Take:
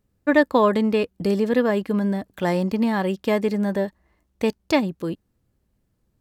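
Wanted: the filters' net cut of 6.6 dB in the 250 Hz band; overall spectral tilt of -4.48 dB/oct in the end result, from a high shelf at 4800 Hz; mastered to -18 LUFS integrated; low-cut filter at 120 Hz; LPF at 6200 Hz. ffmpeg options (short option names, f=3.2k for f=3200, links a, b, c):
-af "highpass=120,lowpass=6.2k,equalizer=f=250:t=o:g=-8,highshelf=f=4.8k:g=-8,volume=7.5dB"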